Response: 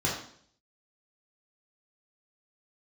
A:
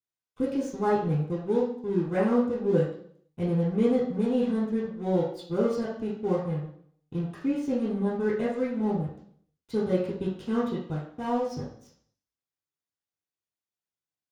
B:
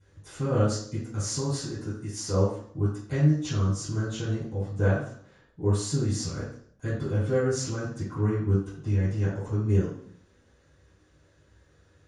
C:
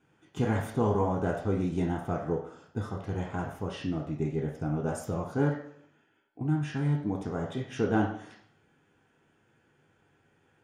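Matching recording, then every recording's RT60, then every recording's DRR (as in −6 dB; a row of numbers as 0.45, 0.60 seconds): A; 0.60, 0.60, 0.60 seconds; −7.0, −13.5, −0.5 decibels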